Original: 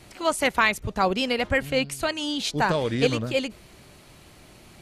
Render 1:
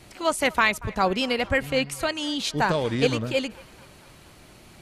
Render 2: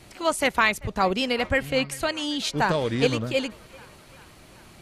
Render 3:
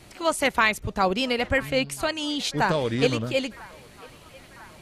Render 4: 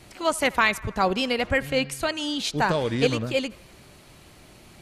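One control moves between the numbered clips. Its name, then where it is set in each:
narrowing echo, time: 233, 390, 995, 81 ms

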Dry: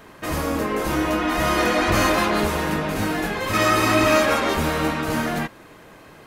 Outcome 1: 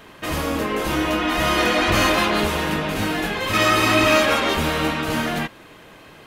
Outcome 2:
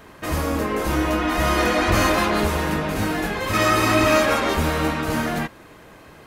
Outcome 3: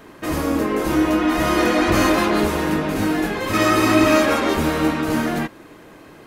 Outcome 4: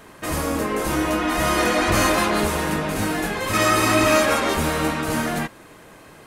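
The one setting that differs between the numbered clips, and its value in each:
bell, frequency: 3100, 64, 310, 9100 Hz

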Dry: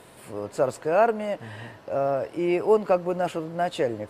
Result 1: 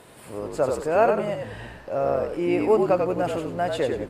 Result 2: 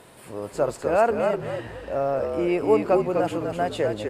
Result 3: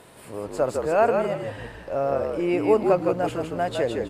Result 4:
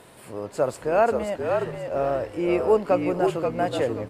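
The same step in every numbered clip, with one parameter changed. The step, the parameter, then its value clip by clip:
frequency-shifting echo, time: 93, 250, 159, 531 ms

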